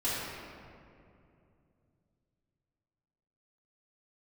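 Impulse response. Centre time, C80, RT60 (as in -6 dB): 146 ms, -1.0 dB, 2.6 s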